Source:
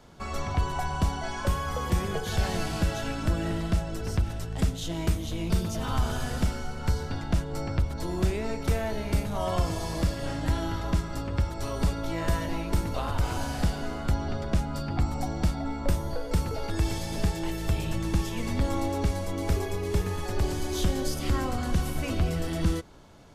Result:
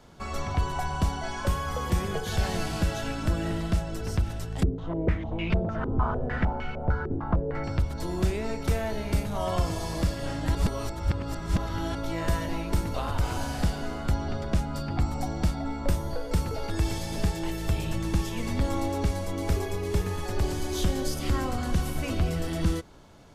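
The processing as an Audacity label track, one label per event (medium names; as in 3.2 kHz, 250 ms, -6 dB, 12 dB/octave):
4.630000	7.640000	step-sequenced low-pass 6.6 Hz 380–2500 Hz
10.550000	11.950000	reverse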